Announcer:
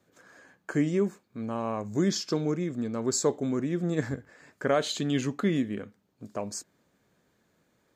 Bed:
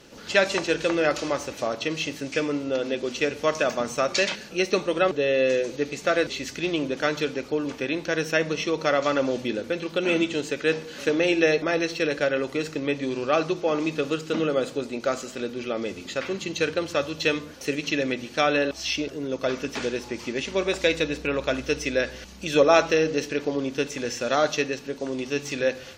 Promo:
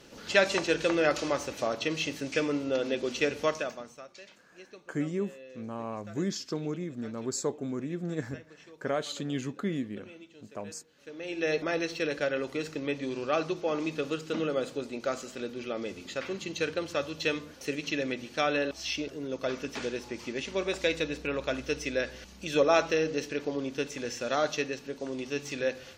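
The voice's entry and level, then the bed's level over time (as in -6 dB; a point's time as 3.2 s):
4.20 s, -5.5 dB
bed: 3.43 s -3 dB
4.14 s -27 dB
10.96 s -27 dB
11.55 s -6 dB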